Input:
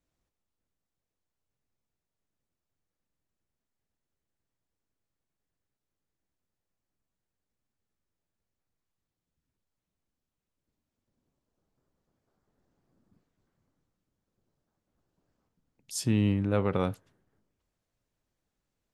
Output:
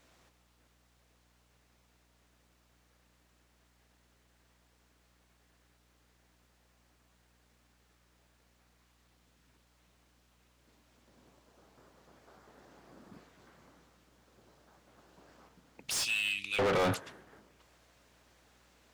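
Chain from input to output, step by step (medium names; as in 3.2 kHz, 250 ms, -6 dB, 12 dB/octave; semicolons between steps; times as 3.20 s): 15.94–16.59 s: elliptic high-pass 2.5 kHz, stop band 40 dB; overdrive pedal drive 38 dB, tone 4 kHz, clips at -13.5 dBFS; hum 60 Hz, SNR 28 dB; trim -7.5 dB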